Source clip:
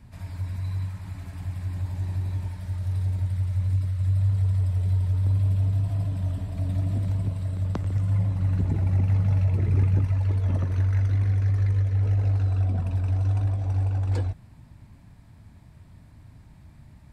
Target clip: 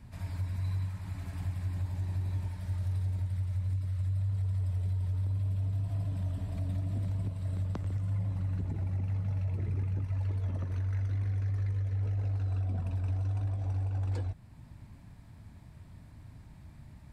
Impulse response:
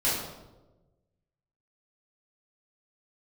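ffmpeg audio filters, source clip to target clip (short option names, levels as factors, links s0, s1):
-af "alimiter=level_in=1.06:limit=0.0631:level=0:latency=1:release=490,volume=0.944,volume=0.841"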